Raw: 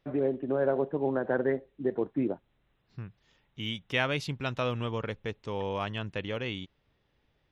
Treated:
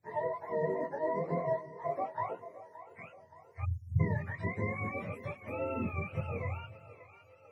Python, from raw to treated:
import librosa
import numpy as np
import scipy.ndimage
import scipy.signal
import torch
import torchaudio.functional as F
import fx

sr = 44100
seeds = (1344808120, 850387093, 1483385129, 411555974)

y = fx.octave_mirror(x, sr, pivot_hz=510.0)
y = fx.echo_split(y, sr, split_hz=370.0, low_ms=190, high_ms=573, feedback_pct=52, wet_db=-15)
y = fx.chorus_voices(y, sr, voices=6, hz=0.38, base_ms=22, depth_ms=4.1, mix_pct=45)
y = fx.spec_erase(y, sr, start_s=3.65, length_s=0.35, low_hz=220.0, high_hz=5300.0)